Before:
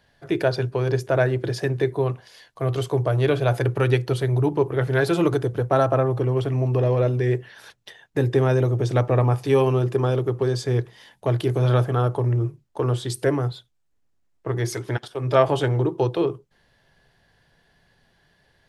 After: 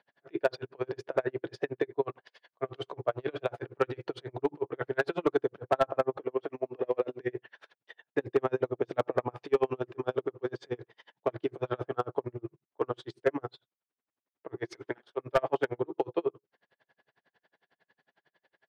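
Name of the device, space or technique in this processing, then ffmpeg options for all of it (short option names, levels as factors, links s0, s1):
helicopter radio: -filter_complex "[0:a]highpass=320,lowpass=2800,aeval=exprs='val(0)*pow(10,-39*(0.5-0.5*cos(2*PI*11*n/s))/20)':c=same,asoftclip=type=hard:threshold=0.15,asettb=1/sr,asplit=3[s0][s1][s2];[s0]atrim=end=6.174[s3];[s1]atrim=start=6.17:end=7.21,asetpts=PTS-STARTPTS,afade=t=in:d=0.004:c=qsin,afade=t=out:st=1.036:d=0.004:c=qsin,highpass=220[s4];[s2]atrim=start=7.206[s5];[s3][s4]acrossfade=d=0.004:c1=hsin:c2=qsin[s6];[s6][s5]acrossfade=d=0.004:c1=qsin:c2=hsin"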